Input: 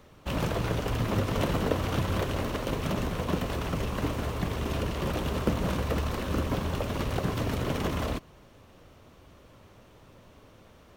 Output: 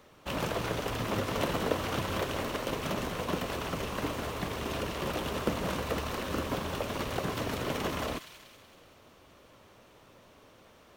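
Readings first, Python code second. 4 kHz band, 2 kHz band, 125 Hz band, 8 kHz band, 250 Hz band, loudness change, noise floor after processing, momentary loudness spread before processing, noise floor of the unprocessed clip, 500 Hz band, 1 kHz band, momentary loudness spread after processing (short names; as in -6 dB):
+0.5 dB, 0.0 dB, -8.0 dB, +1.0 dB, -4.5 dB, -3.0 dB, -58 dBFS, 3 LU, -55 dBFS, -1.5 dB, -0.5 dB, 4 LU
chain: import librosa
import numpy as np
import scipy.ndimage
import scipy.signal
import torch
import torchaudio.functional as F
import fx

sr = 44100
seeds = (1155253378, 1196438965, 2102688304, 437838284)

p1 = fx.low_shelf(x, sr, hz=190.0, db=-11.0)
y = p1 + fx.echo_wet_highpass(p1, sr, ms=188, feedback_pct=54, hz=2100.0, wet_db=-8.5, dry=0)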